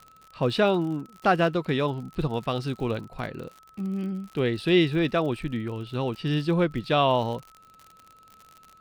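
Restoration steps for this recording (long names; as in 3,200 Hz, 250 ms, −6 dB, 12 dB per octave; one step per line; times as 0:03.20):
click removal
notch filter 1,300 Hz, Q 30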